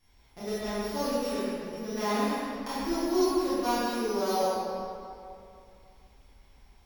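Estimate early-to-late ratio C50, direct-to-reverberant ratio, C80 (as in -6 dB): -5.0 dB, -11.5 dB, -2.5 dB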